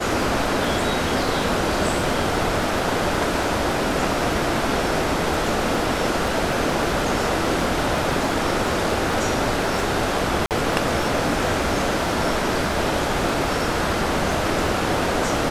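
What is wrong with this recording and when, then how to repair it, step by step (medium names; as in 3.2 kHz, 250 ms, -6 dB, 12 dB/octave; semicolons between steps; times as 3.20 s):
crackle 21 per s -27 dBFS
10.46–10.51 s: dropout 48 ms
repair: de-click; interpolate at 10.46 s, 48 ms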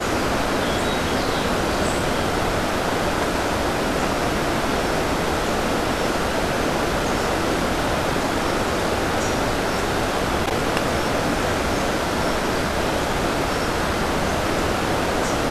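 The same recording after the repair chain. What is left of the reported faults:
nothing left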